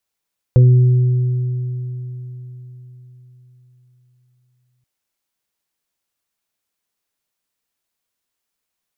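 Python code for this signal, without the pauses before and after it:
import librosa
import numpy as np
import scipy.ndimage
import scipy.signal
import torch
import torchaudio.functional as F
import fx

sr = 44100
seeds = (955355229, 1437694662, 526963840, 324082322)

y = fx.additive(sr, length_s=4.28, hz=125.0, level_db=-5, upper_db=(-20, -17.5, -13), decay_s=4.38, upper_decays_s=(0.99, 3.47, 0.25))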